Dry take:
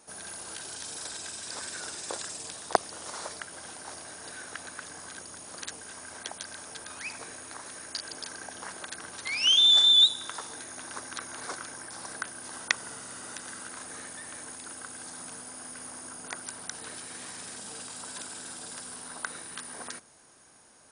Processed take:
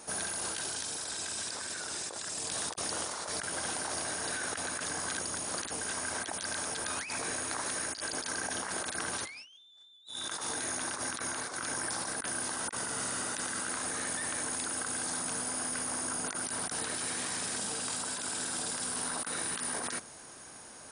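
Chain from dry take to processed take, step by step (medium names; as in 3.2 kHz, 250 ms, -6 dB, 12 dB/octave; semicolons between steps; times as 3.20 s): compressor with a negative ratio -43 dBFS, ratio -1; trim +2.5 dB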